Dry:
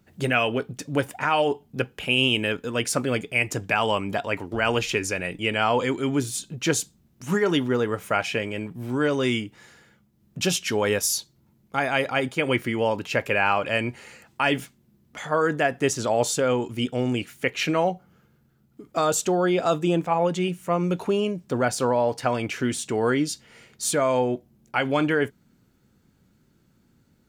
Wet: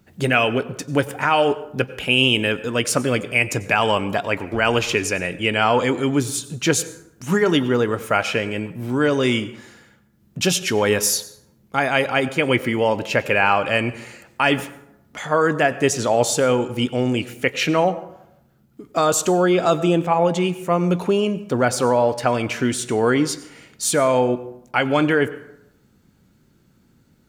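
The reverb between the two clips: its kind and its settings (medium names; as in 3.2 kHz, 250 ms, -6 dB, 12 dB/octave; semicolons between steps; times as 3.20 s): plate-style reverb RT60 0.81 s, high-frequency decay 0.55×, pre-delay 80 ms, DRR 15.5 dB; trim +4.5 dB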